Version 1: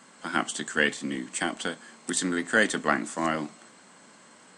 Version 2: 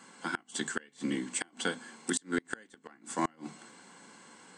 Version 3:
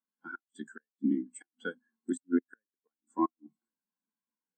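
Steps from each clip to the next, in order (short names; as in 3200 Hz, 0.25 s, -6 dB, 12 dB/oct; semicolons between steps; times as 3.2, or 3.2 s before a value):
notches 50/100/150/200/250 Hz; notch comb 620 Hz; flipped gate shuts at -17 dBFS, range -32 dB
spectral expander 2.5:1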